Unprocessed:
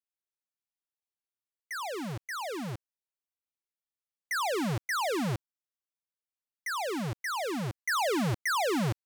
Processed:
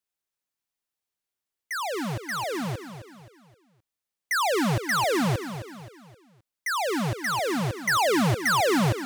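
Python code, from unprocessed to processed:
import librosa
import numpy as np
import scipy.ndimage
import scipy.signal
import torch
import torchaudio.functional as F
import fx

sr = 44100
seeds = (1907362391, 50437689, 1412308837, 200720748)

y = fx.echo_feedback(x, sr, ms=262, feedback_pct=41, wet_db=-11.0)
y = F.gain(torch.from_numpy(y), 6.0).numpy()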